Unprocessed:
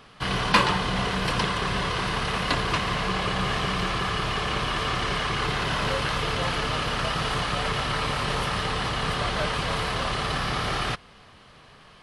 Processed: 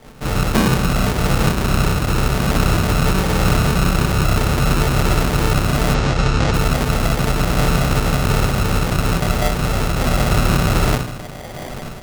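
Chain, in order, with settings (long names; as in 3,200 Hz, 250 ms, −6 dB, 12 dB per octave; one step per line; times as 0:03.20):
spectral tilt −4 dB per octave
echo with a time of its own for lows and highs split 550 Hz, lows 152 ms, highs 728 ms, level −14 dB
rectangular room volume 130 cubic metres, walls furnished, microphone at 3.8 metres
decimation without filtering 33×
high-pass filter 210 Hz 6 dB per octave
automatic gain control gain up to 9.5 dB
0:05.94–0:06.54: low-pass filter 7,000 Hz 24 dB per octave
level −1 dB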